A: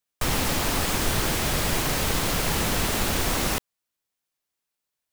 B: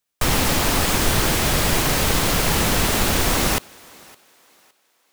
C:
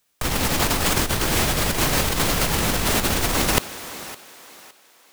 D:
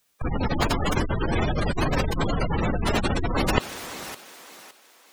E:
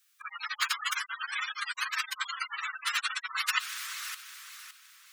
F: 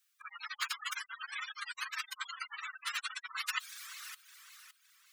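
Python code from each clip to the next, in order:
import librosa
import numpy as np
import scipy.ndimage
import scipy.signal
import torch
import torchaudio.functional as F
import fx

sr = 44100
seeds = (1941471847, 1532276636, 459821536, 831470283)

y1 = fx.echo_thinned(x, sr, ms=563, feedback_pct=34, hz=320.0, wet_db=-24.0)
y1 = y1 * 10.0 ** (5.5 / 20.0)
y2 = fx.over_compress(y1, sr, threshold_db=-23.0, ratio=-0.5)
y2 = y2 * 10.0 ** (4.0 / 20.0)
y3 = fx.spec_gate(y2, sr, threshold_db=-15, keep='strong')
y4 = scipy.signal.sosfilt(scipy.signal.butter(8, 1200.0, 'highpass', fs=sr, output='sos'), y3)
y5 = fx.dereverb_blind(y4, sr, rt60_s=0.84)
y5 = y5 * 10.0 ** (-6.5 / 20.0)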